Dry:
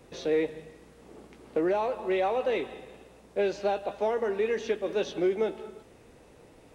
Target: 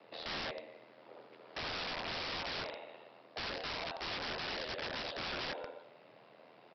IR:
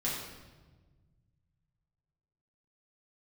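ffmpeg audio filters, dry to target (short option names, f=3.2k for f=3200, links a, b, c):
-filter_complex "[0:a]aeval=exprs='val(0)*sin(2*PI*41*n/s)':c=same,lowshelf=f=380:g=-11.5,asplit=2[a][b];[b]adelay=82,lowpass=f=3.2k:p=1,volume=-11dB,asplit=2[c][d];[d]adelay=82,lowpass=f=3.2k:p=1,volume=0.4,asplit=2[e][f];[f]adelay=82,lowpass=f=3.2k:p=1,volume=0.4,asplit=2[g][h];[h]adelay=82,lowpass=f=3.2k:p=1,volume=0.4[i];[c][e][g][i]amix=inputs=4:normalize=0[j];[a][j]amix=inputs=2:normalize=0,alimiter=level_in=3dB:limit=-24dB:level=0:latency=1:release=36,volume=-3dB,highshelf=f=2.1k:g=-3,afreqshift=110,aresample=11025,aeval=exprs='(mod(75*val(0)+1,2)-1)/75':c=same,aresample=44100,volume=3dB"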